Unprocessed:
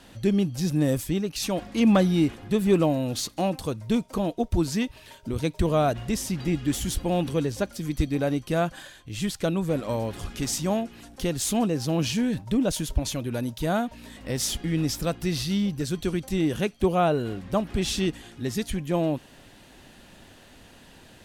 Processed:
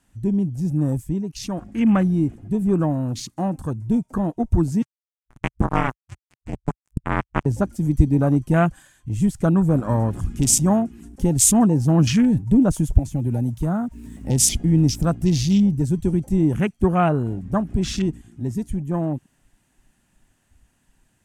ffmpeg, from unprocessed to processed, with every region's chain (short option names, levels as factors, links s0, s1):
-filter_complex "[0:a]asettb=1/sr,asplit=3[s0][s1][s2];[s0]atrim=end=4.824[s3];[s1]atrim=start=4.82:end=7.46,asetpts=PTS-STARTPTS,afade=t=in:d=0.004:c=qsin,afade=t=out:st=2.636:d=0.004:c=qsin,lowpass=9900,acrusher=bits=2:mix=0:aa=0.5,aeval=exprs='val(0)*sin(2*PI*130*n/s)':c=same[s4];[s2]atrim=start=7.456[s5];[s3][s4]acrossfade=d=0.004:c1=hsin:c2=qsin[s6];[s6][s5]acrossfade=d=0.004:c1=qsin:c2=hsin,asettb=1/sr,asplit=3[s7][s8][s9];[s7]atrim=end=12.984[s10];[s8]atrim=start=12.98:end=14.3,asetpts=PTS-STARTPTS,afade=t=in:d=0.004:c=qsin,afade=t=out:st=1.316:d=0.004:c=qsin,acrossover=split=170|450[s11][s12][s13];[s11]acompressor=threshold=0.0224:ratio=4[s14];[s12]acompressor=threshold=0.0178:ratio=4[s15];[s13]acompressor=threshold=0.0158:ratio=4[s16];[s14][s15][s16]amix=inputs=3:normalize=0,acrusher=bits=8:mix=0:aa=0.5[s17];[s9]atrim=start=14.296[s18];[s10][s17]acrossfade=d=0.004:c1=hsin:c2=qsin[s19];[s19][s18]acrossfade=d=0.004:c1=qsin:c2=hsin,afwtdn=0.0178,equalizer=f=125:t=o:w=1:g=3,equalizer=f=500:t=o:w=1:g=-9,equalizer=f=4000:t=o:w=1:g=-10,equalizer=f=8000:t=o:w=1:g=8,dynaudnorm=f=470:g=21:m=2.51,volume=1.33"